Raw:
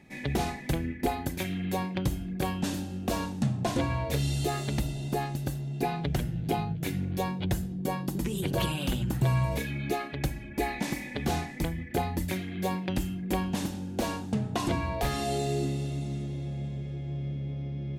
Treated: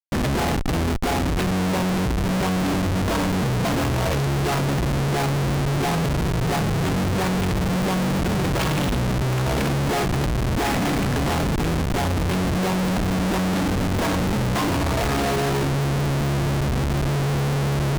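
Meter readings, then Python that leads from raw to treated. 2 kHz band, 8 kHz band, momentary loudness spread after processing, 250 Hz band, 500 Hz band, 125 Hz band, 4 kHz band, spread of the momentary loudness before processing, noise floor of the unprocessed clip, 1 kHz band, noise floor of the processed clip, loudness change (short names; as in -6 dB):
+10.5 dB, +9.0 dB, 1 LU, +9.0 dB, +9.0 dB, +9.0 dB, +9.5 dB, 5 LU, -40 dBFS, +9.0 dB, -22 dBFS, +9.0 dB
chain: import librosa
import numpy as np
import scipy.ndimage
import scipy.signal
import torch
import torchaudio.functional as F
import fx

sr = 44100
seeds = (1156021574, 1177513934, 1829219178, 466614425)

p1 = scipy.signal.sosfilt(scipy.signal.butter(4, 5800.0, 'lowpass', fs=sr, output='sos'), x)
p2 = p1 + fx.echo_diffused(p1, sr, ms=1022, feedback_pct=72, wet_db=-15.0, dry=0)
p3 = fx.schmitt(p2, sr, flips_db=-36.0)
p4 = fx.doppler_dist(p3, sr, depth_ms=0.28)
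y = p4 * librosa.db_to_amplitude(9.0)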